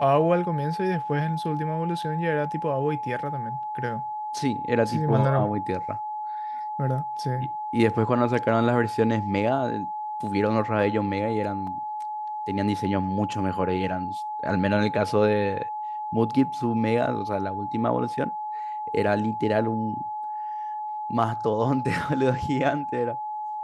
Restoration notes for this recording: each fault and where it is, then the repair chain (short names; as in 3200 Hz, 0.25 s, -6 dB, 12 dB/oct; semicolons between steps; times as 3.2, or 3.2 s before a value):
tone 850 Hz -29 dBFS
11.67 gap 3.7 ms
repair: notch 850 Hz, Q 30; interpolate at 11.67, 3.7 ms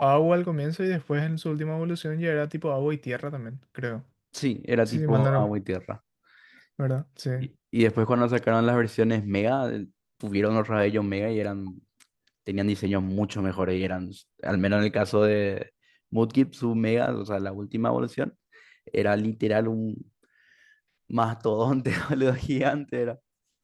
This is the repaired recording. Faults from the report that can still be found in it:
none